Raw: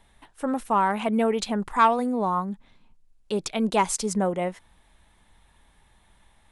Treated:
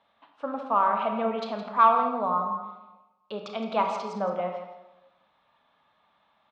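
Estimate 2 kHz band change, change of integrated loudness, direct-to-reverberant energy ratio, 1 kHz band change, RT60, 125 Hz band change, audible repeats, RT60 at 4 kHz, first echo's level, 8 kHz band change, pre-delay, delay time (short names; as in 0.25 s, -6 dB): -5.5 dB, -1.5 dB, 2.5 dB, +0.5 dB, 1.1 s, -9.5 dB, 1, 0.70 s, -11.5 dB, under -20 dB, 25 ms, 0.165 s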